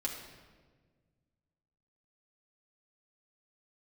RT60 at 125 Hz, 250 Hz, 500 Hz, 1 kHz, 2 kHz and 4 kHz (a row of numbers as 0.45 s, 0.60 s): 2.5 s, 2.1 s, 1.7 s, 1.3 s, 1.2 s, 1.0 s